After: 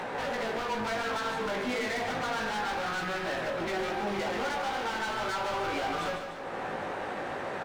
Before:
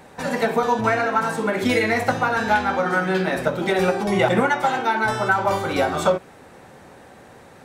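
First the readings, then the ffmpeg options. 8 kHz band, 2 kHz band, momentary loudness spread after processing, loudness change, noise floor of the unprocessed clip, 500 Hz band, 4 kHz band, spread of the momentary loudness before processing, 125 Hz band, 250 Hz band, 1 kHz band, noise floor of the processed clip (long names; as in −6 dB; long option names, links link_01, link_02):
−7.5 dB, −10.0 dB, 4 LU, −11.5 dB, −46 dBFS, −11.5 dB, −5.0 dB, 3 LU, −15.0 dB, −13.0 dB, −10.0 dB, −37 dBFS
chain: -filter_complex "[0:a]highshelf=frequency=6400:gain=-10,acompressor=mode=upward:threshold=-19dB:ratio=2.5,asplit=2[link_01][link_02];[link_02]highpass=frequency=720:poles=1,volume=18dB,asoftclip=type=tanh:threshold=-7dB[link_03];[link_01][link_03]amix=inputs=2:normalize=0,lowpass=frequency=1800:poles=1,volume=-6dB,volume=21dB,asoftclip=hard,volume=-21dB,flanger=delay=17.5:depth=2.5:speed=0.33,asplit=2[link_04][link_05];[link_05]aecho=0:1:149|298|447|596|745|894|1043:0.398|0.227|0.129|0.0737|0.042|0.024|0.0137[link_06];[link_04][link_06]amix=inputs=2:normalize=0,volume=-7.5dB"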